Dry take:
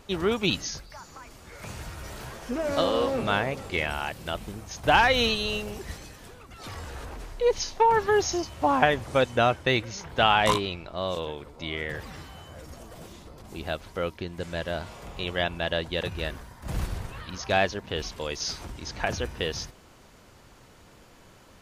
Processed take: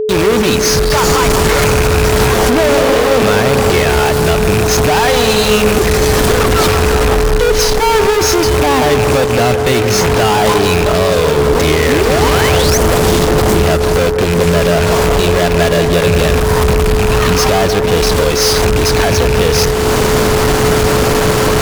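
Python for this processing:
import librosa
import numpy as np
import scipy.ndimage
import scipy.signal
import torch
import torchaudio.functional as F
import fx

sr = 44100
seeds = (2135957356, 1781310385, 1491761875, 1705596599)

p1 = fx.rattle_buzz(x, sr, strikes_db=-37.0, level_db=-24.0)
p2 = fx.recorder_agc(p1, sr, target_db=-8.0, rise_db_per_s=51.0, max_gain_db=30)
p3 = fx.spec_paint(p2, sr, seeds[0], shape='rise', start_s=11.88, length_s=0.9, low_hz=230.0, high_hz=6600.0, level_db=-23.0)
p4 = fx.sample_hold(p3, sr, seeds[1], rate_hz=4000.0, jitter_pct=0)
p5 = p3 + F.gain(torch.from_numpy(p4), -6.0).numpy()
p6 = fx.fuzz(p5, sr, gain_db=31.0, gate_db=-33.0)
p7 = p6 + fx.echo_bbd(p6, sr, ms=175, stages=2048, feedback_pct=70, wet_db=-9, dry=0)
p8 = p7 + 10.0 ** (-15.0 / 20.0) * np.sin(2.0 * np.pi * 430.0 * np.arange(len(p7)) / sr)
p9 = fx.end_taper(p8, sr, db_per_s=140.0)
y = F.gain(torch.from_numpy(p9), 2.0).numpy()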